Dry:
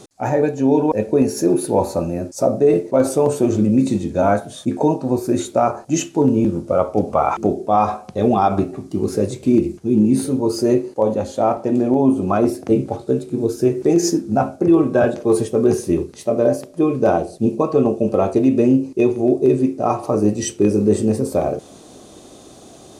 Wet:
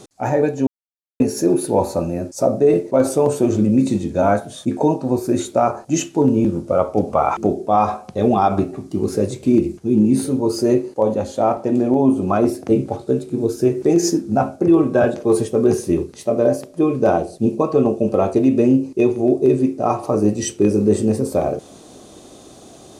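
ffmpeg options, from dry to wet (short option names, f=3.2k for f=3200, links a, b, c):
-filter_complex "[0:a]asplit=3[a][b][c];[a]atrim=end=0.67,asetpts=PTS-STARTPTS,afade=t=out:st=0.666:d=0.004:c=hsin[d];[b]atrim=start=0.67:end=1.2,asetpts=PTS-STARTPTS,volume=0[e];[c]atrim=start=1.2,asetpts=PTS-STARTPTS,afade=t=in:d=0.004:c=hsin[f];[d][e][f]concat=n=3:v=0:a=1"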